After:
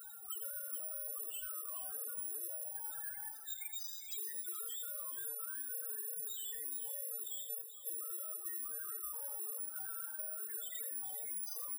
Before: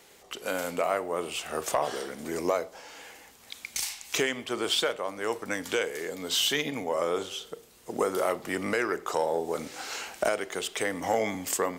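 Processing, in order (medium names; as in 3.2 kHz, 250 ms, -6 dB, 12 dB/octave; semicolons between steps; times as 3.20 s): short-time spectra conjugated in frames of 75 ms; rippled Chebyshev low-pass 5.1 kHz, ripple 9 dB; careless resampling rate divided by 4×, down filtered, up zero stuff; in parallel at -7 dB: saturation -28 dBFS, distortion -6 dB; on the sum: loudest bins only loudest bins 8; reverse; upward compressor, threshold -44 dBFS; reverse; tone controls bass -15 dB, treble -2 dB; peak limiter -40.5 dBFS, peak gain reduction 20 dB; delay 83 ms -11.5 dB; compression 16:1, threshold -52 dBFS, peak gain reduction 8.5 dB; tilt EQ +2.5 dB/octave; bit-crushed delay 429 ms, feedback 35%, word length 13-bit, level -11 dB; trim +6.5 dB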